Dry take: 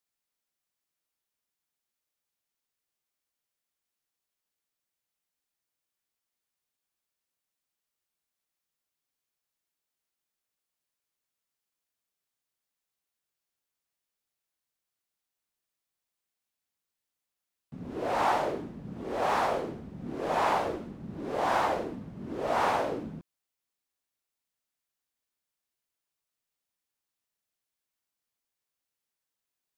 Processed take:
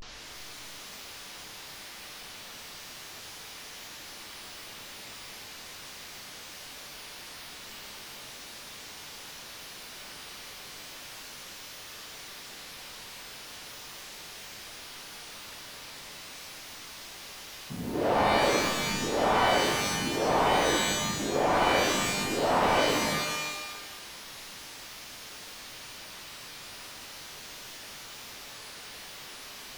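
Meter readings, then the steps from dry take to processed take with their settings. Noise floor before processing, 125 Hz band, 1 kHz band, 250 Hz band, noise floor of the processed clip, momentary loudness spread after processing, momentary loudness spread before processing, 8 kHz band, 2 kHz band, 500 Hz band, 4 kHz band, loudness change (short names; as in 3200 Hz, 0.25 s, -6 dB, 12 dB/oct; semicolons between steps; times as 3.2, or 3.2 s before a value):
under -85 dBFS, +6.0 dB, +2.5 dB, +5.5 dB, -45 dBFS, 17 LU, 14 LU, +19.0 dB, +8.5 dB, +4.5 dB, +15.5 dB, -2.0 dB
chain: delta modulation 32 kbps, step -43.5 dBFS; vibrato 0.37 Hz 85 cents; shimmer reverb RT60 1.2 s, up +12 st, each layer -2 dB, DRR 4 dB; gain +3.5 dB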